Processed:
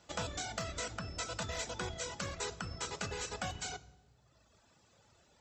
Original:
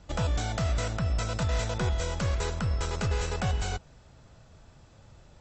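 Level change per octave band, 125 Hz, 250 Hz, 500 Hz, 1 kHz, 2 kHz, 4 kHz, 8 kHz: −17.0, −11.0, −8.5, −6.5, −5.0, −3.5, −1.5 decibels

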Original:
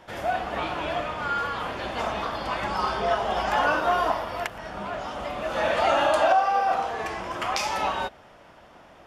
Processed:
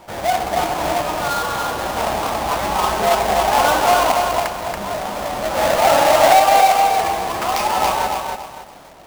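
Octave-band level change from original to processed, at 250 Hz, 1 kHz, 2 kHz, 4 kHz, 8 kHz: +7.5, +9.5, +6.0, +9.5, +17.0 decibels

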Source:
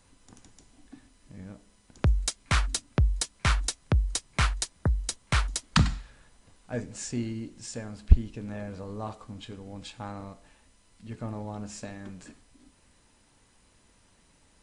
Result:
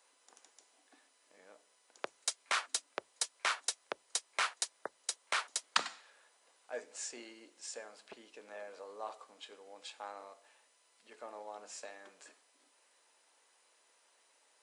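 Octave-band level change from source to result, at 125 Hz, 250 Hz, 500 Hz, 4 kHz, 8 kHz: below −40 dB, −25.0 dB, −6.5 dB, −4.5 dB, −4.5 dB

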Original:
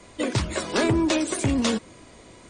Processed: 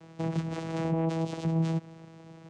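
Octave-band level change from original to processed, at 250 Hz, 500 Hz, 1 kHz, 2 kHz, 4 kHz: −7.0, −7.5, −6.5, −15.5, −17.5 decibels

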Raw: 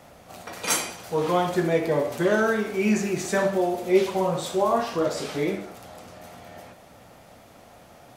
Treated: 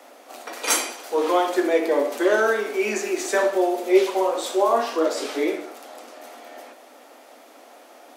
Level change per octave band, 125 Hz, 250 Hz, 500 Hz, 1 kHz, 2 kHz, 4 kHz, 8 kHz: below −20 dB, 0.0 dB, +3.0 dB, +3.0 dB, +3.0 dB, +3.0 dB, +3.0 dB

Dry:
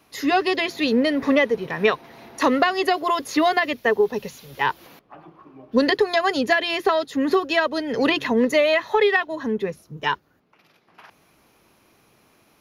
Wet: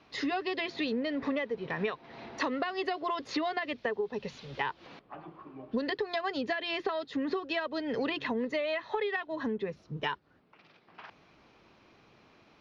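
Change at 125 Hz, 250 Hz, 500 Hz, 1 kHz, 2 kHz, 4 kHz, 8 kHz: −6.5 dB, −11.5 dB, −13.0 dB, −12.5 dB, −12.5 dB, −11.5 dB, below −15 dB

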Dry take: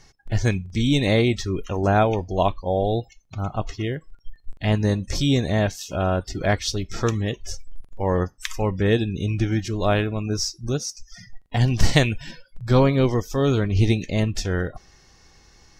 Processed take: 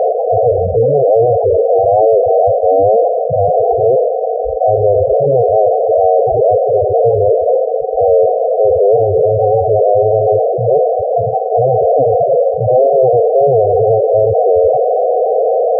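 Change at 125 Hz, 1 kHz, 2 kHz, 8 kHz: −0.5 dB, +15.0 dB, below −40 dB, below −40 dB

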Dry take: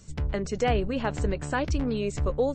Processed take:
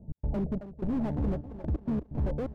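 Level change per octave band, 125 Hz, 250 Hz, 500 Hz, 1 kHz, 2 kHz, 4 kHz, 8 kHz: −2.5 dB, −1.0 dB, −10.0 dB, −13.5 dB, −19.5 dB, below −20 dB, below −25 dB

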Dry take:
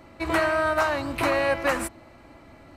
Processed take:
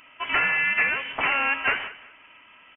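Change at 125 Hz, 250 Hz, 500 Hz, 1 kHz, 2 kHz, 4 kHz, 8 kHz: −11.0 dB, −12.5 dB, −14.0 dB, −2.5 dB, +5.5 dB, +4.5 dB, below −40 dB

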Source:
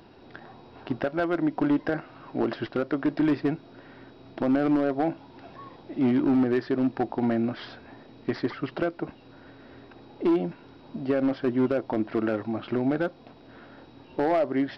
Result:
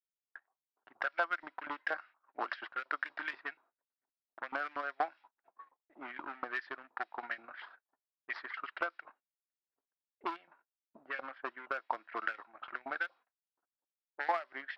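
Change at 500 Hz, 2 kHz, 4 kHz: −18.5, +0.5, −7.5 decibels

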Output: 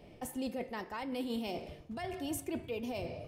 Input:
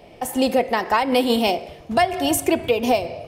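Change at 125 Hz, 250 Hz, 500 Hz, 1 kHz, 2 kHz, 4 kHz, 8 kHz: −10.5, −15.5, −20.0, −22.5, −20.0, −20.5, −18.0 decibels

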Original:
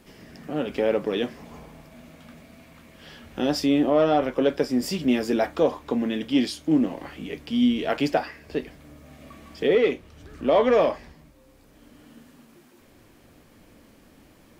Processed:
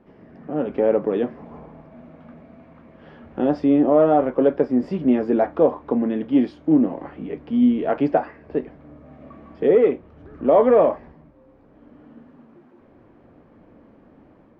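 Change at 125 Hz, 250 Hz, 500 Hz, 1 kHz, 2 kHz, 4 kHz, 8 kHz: +2.5 dB, +4.0 dB, +4.5 dB, +3.5 dB, −5.0 dB, below −10 dB, below −25 dB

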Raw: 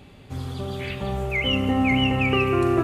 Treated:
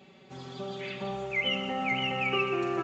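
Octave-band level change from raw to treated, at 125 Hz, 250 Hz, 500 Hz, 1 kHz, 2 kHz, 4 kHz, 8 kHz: −15.5 dB, −13.0 dB, −7.5 dB, −5.0 dB, −4.5 dB, −5.0 dB, can't be measured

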